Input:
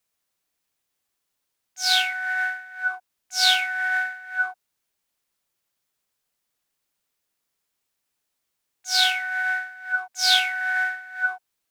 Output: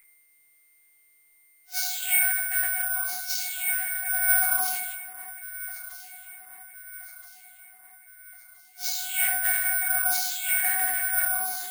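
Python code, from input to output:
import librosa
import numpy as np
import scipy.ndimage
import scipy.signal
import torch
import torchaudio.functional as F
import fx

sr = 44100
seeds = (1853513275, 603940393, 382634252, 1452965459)

y = fx.phase_scramble(x, sr, seeds[0], window_ms=200)
y = fx.over_compress(y, sr, threshold_db=-33.0, ratio=-1.0)
y = fx.peak_eq(y, sr, hz=12000.0, db=12.0, octaves=0.37)
y = y + 10.0 ** (-49.0 / 20.0) * np.sin(2.0 * np.pi * 2100.0 * np.arange(len(y)) / sr)
y = fx.echo_alternate(y, sr, ms=662, hz=1200.0, feedback_pct=71, wet_db=-12)
y = fx.noise_reduce_blind(y, sr, reduce_db=7)
y = fx.highpass(y, sr, hz=920.0, slope=6, at=(1.9, 4.1))
y = fx.room_shoebox(y, sr, seeds[1], volume_m3=70.0, walls='mixed', distance_m=1.3)
y = (np.kron(scipy.signal.resample_poly(y, 1, 4), np.eye(4)[0]) * 4)[:len(y)]
y = fx.quant_dither(y, sr, seeds[2], bits=10, dither='none')
y = fx.sustainer(y, sr, db_per_s=33.0)
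y = F.gain(torch.from_numpy(y), -6.5).numpy()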